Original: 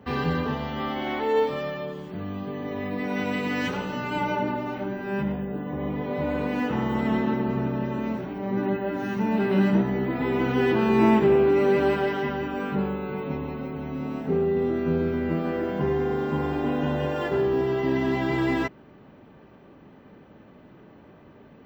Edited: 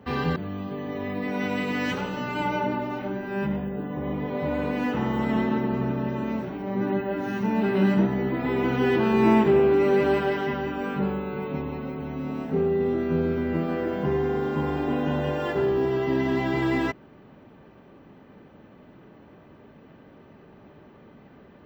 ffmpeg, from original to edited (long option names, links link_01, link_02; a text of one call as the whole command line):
ffmpeg -i in.wav -filter_complex "[0:a]asplit=2[link_01][link_02];[link_01]atrim=end=0.362[link_03];[link_02]atrim=start=2.118[link_04];[link_03][link_04]acrossfade=duration=0.004:curve1=hsin:curve2=hsin" out.wav